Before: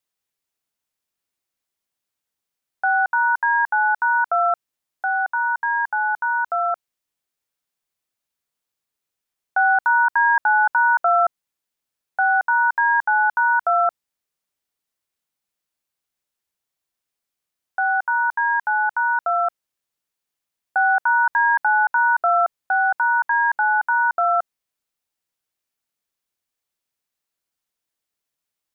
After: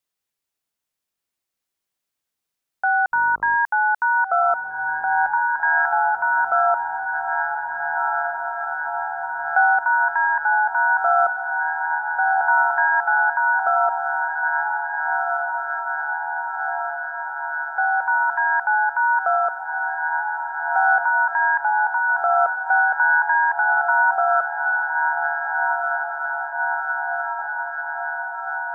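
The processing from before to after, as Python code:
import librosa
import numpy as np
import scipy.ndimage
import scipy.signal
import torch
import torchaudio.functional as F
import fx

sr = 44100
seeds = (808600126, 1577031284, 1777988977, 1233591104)

y = fx.rider(x, sr, range_db=10, speed_s=0.5)
y = fx.dmg_buzz(y, sr, base_hz=50.0, harmonics=27, level_db=-47.0, tilt_db=-2, odd_only=False, at=(3.12, 3.55), fade=0.02)
y = fx.echo_diffused(y, sr, ms=1733, feedback_pct=71, wet_db=-5.0)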